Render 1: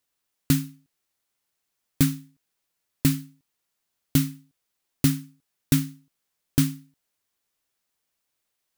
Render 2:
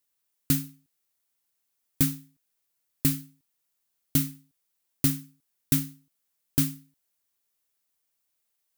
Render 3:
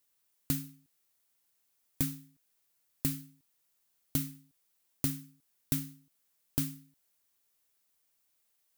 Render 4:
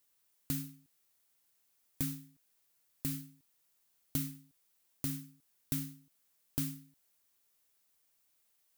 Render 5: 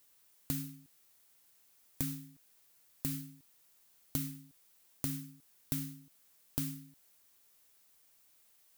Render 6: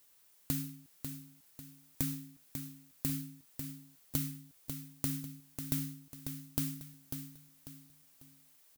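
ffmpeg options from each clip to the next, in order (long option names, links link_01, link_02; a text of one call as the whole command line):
ffmpeg -i in.wav -af "highshelf=frequency=8000:gain=9.5,volume=-5dB" out.wav
ffmpeg -i in.wav -af "acompressor=threshold=-39dB:ratio=2,volume=2.5dB" out.wav
ffmpeg -i in.wav -af "alimiter=limit=-19dB:level=0:latency=1:release=106,volume=1dB" out.wav
ffmpeg -i in.wav -af "acompressor=threshold=-46dB:ratio=2,volume=7.5dB" out.wav
ffmpeg -i in.wav -af "aecho=1:1:545|1090|1635|2180:0.422|0.152|0.0547|0.0197,volume=1.5dB" out.wav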